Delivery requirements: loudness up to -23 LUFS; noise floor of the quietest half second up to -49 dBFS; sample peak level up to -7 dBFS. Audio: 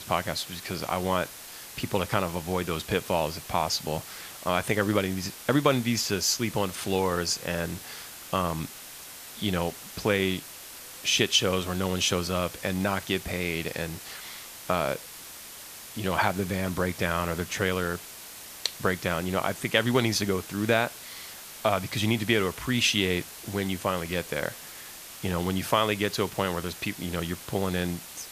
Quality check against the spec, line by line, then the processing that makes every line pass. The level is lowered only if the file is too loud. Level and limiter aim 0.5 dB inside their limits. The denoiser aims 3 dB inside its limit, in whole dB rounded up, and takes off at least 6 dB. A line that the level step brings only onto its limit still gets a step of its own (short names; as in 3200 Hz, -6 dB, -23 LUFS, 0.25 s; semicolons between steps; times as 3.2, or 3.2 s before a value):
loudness -28.0 LUFS: OK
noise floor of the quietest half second -44 dBFS: fail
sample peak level -5.5 dBFS: fail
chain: denoiser 8 dB, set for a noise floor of -44 dBFS; limiter -7.5 dBFS